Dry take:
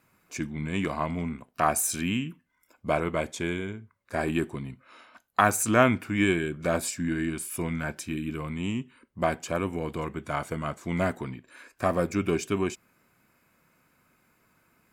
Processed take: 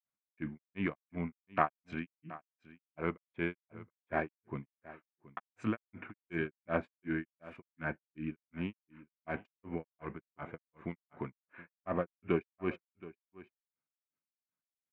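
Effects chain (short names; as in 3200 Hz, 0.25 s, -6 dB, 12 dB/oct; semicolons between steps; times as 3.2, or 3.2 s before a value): Wiener smoothing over 9 samples; HPF 88 Hz; expander -50 dBFS; ladder low-pass 2900 Hz, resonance 30%; grains 0.218 s, grains 2.7/s, spray 20 ms, pitch spread up and down by 0 st; on a send: echo 0.724 s -18 dB; on the sum: gain +3.5 dB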